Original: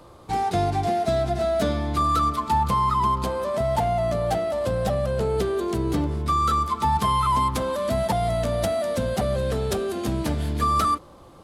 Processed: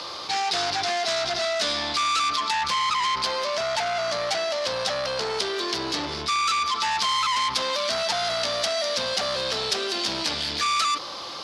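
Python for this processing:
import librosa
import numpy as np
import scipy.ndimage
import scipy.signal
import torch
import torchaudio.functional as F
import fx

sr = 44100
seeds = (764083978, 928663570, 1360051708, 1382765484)

y = fx.high_shelf_res(x, sr, hz=6400.0, db=-9.0, q=3.0)
y = 10.0 ** (-24.0 / 20.0) * np.tanh(y / 10.0 ** (-24.0 / 20.0))
y = fx.weighting(y, sr, curve='ITU-R 468')
y = fx.env_flatten(y, sr, amount_pct=50)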